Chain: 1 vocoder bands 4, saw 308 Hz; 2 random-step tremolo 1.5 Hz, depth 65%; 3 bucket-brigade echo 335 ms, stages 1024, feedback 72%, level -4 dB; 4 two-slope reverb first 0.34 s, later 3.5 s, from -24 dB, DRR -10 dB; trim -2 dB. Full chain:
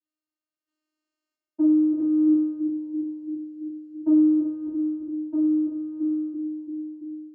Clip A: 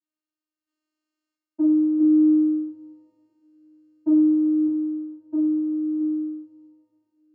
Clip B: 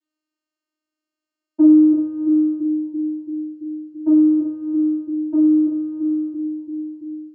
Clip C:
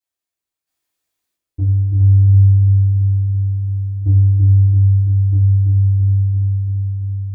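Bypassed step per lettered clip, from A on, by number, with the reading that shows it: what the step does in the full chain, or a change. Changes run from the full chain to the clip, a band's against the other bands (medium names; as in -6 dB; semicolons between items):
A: 3, momentary loudness spread change -2 LU; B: 2, loudness change +6.0 LU; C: 1, loudness change +10.0 LU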